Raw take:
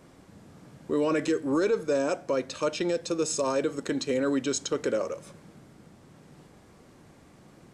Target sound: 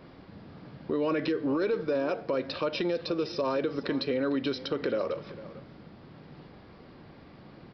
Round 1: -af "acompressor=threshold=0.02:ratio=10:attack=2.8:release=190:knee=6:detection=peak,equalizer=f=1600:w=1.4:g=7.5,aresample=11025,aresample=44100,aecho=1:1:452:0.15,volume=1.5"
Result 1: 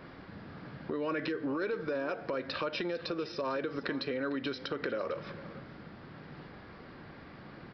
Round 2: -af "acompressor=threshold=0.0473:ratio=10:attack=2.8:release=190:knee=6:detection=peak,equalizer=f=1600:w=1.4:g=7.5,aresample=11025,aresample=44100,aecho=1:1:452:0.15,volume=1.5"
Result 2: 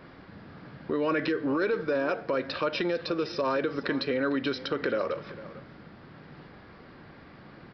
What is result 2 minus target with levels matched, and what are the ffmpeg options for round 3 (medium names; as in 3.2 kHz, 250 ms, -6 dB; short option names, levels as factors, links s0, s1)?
2 kHz band +5.0 dB
-af "acompressor=threshold=0.0473:ratio=10:attack=2.8:release=190:knee=6:detection=peak,aresample=11025,aresample=44100,aecho=1:1:452:0.15,volume=1.5"